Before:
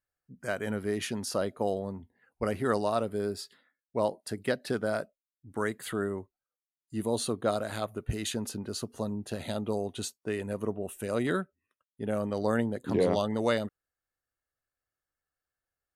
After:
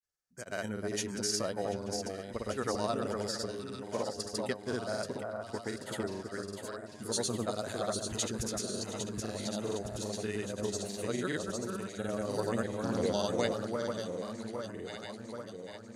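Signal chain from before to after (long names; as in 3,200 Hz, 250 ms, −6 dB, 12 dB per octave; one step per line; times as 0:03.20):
parametric band 6,200 Hz +12.5 dB 1.1 octaves
delay that swaps between a low-pass and a high-pass 366 ms, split 1,500 Hz, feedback 81%, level −4 dB
granular cloud, pitch spread up and down by 0 semitones
level −4.5 dB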